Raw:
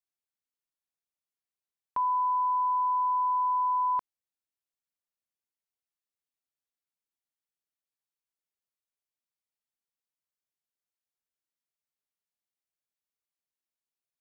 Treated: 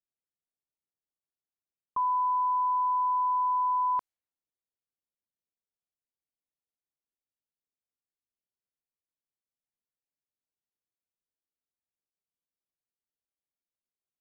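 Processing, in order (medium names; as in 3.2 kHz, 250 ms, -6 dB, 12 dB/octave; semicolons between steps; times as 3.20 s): level-controlled noise filter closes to 590 Hz, open at -29.5 dBFS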